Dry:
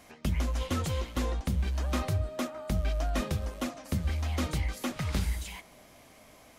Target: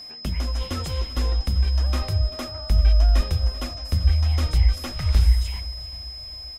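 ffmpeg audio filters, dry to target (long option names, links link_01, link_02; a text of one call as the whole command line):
ffmpeg -i in.wav -filter_complex "[0:a]acontrast=35,asubboost=boost=10.5:cutoff=64,aeval=exprs='val(0)+0.0224*sin(2*PI*5100*n/s)':channel_layout=same,asplit=2[link_01][link_02];[link_02]aecho=0:1:390|780|1170|1560:0.141|0.0706|0.0353|0.0177[link_03];[link_01][link_03]amix=inputs=2:normalize=0,volume=-4dB" out.wav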